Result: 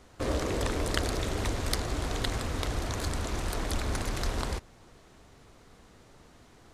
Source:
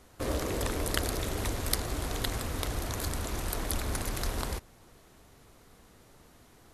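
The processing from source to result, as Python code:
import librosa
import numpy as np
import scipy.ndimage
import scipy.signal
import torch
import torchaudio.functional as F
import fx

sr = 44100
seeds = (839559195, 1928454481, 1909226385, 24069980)

p1 = fx.peak_eq(x, sr, hz=12000.0, db=-14.0, octaves=0.53)
p2 = np.clip(10.0 ** (25.0 / 20.0) * p1, -1.0, 1.0) / 10.0 ** (25.0 / 20.0)
y = p1 + (p2 * librosa.db_to_amplitude(-11.5))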